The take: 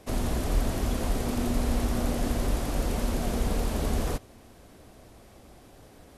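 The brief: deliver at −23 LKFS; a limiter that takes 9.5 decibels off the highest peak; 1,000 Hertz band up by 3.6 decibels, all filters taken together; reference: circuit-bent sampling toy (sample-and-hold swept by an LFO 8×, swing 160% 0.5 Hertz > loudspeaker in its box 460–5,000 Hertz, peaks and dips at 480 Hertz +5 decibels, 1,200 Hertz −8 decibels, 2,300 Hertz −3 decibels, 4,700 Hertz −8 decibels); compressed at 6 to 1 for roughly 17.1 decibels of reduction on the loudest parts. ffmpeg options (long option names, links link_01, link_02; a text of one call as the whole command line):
ffmpeg -i in.wav -af "equalizer=frequency=1000:width_type=o:gain=7.5,acompressor=threshold=-38dB:ratio=6,alimiter=level_in=12.5dB:limit=-24dB:level=0:latency=1,volume=-12.5dB,acrusher=samples=8:mix=1:aa=0.000001:lfo=1:lforange=12.8:lforate=0.5,highpass=460,equalizer=frequency=480:width_type=q:width=4:gain=5,equalizer=frequency=1200:width_type=q:width=4:gain=-8,equalizer=frequency=2300:width_type=q:width=4:gain=-3,equalizer=frequency=4700:width_type=q:width=4:gain=-8,lowpass=frequency=5000:width=0.5412,lowpass=frequency=5000:width=1.3066,volume=29.5dB" out.wav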